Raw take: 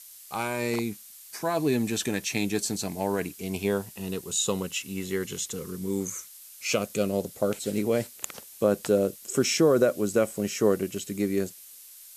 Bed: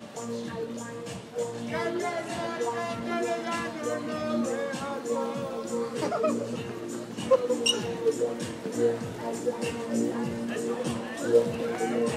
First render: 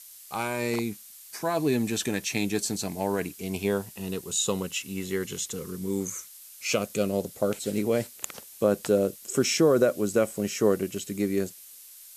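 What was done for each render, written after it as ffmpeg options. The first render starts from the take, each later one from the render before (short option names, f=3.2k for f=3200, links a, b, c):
-af anull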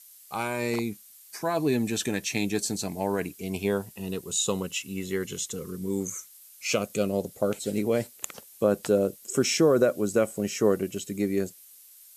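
-af "afftdn=nr=6:nf=-48"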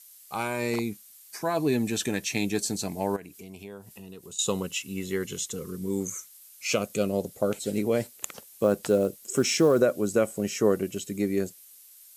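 -filter_complex "[0:a]asettb=1/sr,asplit=3[a][b][c];[a]atrim=end=3.164[d];[b]atrim=start=3.16:end=4.39,asetpts=PTS-STARTPTS,afade=t=in:d=0.004:c=qsin,afade=t=out:st=1.226:d=0.004:c=qsin,acompressor=threshold=-43dB:ratio=3:attack=3.2:release=140:knee=1:detection=peak[e];[c]atrim=start=4.386[f];[d][e]acrossfade=d=0.004:c1=hsin:c2=qsin[g];[g][f]acrossfade=d=0.004:c1=qsin:c2=hsin,asettb=1/sr,asplit=3[h][i][j];[h]atrim=end=8.014[k];[i]atrim=start=8.01:end=9.82,asetpts=PTS-STARTPTS,afade=t=in:d=0.004:c=qsin,afade=t=out:st=1.806:d=0.004:c=qsin,acrusher=bits=8:mode=log:mix=0:aa=0.000001[l];[j]atrim=start=9.816[m];[k][l]acrossfade=d=0.004:c1=hsin:c2=qsin[n];[n][m]acrossfade=d=0.004:c1=qsin:c2=hsin"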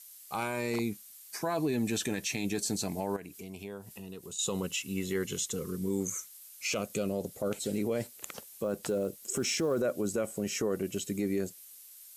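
-af "acompressor=threshold=-29dB:ratio=1.5,alimiter=limit=-22dB:level=0:latency=1:release=13"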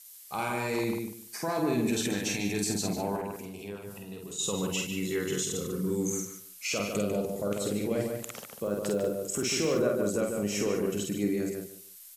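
-filter_complex "[0:a]asplit=2[a][b];[b]adelay=49,volume=-3.5dB[c];[a][c]amix=inputs=2:normalize=0,asplit=2[d][e];[e]adelay=147,lowpass=f=3k:p=1,volume=-4dB,asplit=2[f][g];[g]adelay=147,lowpass=f=3k:p=1,volume=0.21,asplit=2[h][i];[i]adelay=147,lowpass=f=3k:p=1,volume=0.21[j];[f][h][j]amix=inputs=3:normalize=0[k];[d][k]amix=inputs=2:normalize=0"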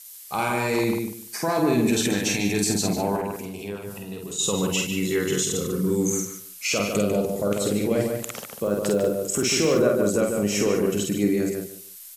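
-af "volume=7dB"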